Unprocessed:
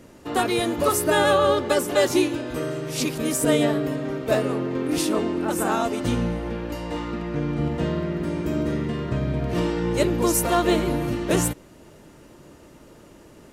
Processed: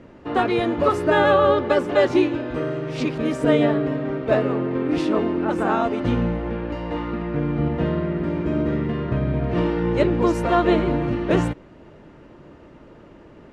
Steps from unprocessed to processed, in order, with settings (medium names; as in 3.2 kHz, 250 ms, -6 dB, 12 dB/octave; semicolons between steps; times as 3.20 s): low-pass 2.5 kHz 12 dB/octave; trim +2.5 dB